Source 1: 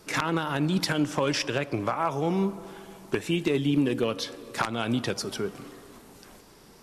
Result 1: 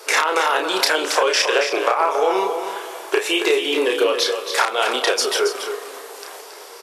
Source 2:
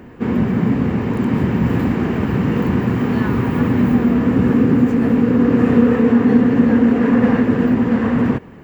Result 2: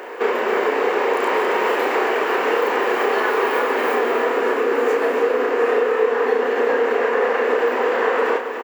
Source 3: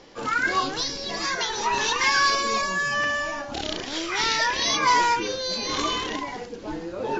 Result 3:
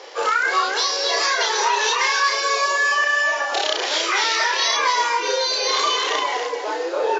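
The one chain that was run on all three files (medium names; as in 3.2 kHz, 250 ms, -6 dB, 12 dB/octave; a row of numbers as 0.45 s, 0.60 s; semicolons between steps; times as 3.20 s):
elliptic high-pass 420 Hz, stop band 80 dB; compression, threshold -30 dBFS; doubling 32 ms -4.5 dB; delay 275 ms -8.5 dB; normalise loudness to -19 LUFS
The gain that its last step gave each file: +15.0 dB, +12.5 dB, +11.0 dB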